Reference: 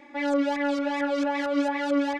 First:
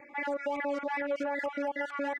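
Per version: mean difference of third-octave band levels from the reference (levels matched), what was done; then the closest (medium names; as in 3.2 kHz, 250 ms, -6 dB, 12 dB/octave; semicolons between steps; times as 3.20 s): 5.0 dB: random holes in the spectrogram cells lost 25%; graphic EQ 125/250/500/1000/2000/4000 Hz +11/-5/+7/+3/+8/-8 dB; peak limiter -18 dBFS, peak gain reduction 9 dB; echo from a far wall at 18 m, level -26 dB; trim -6.5 dB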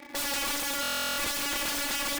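17.5 dB: treble shelf 2.9 kHz +7 dB; in parallel at -4.5 dB: bit crusher 7-bit; on the sum: integer overflow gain 25.5 dB; buffer glitch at 0.81 s, samples 1024, times 15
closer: first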